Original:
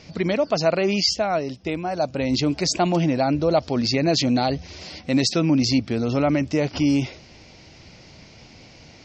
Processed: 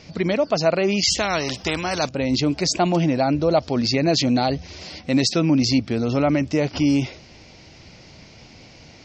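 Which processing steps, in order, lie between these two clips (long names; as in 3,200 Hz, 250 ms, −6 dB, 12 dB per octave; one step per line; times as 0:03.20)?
0:01.03–0:02.09: every bin compressed towards the loudest bin 2 to 1
level +1 dB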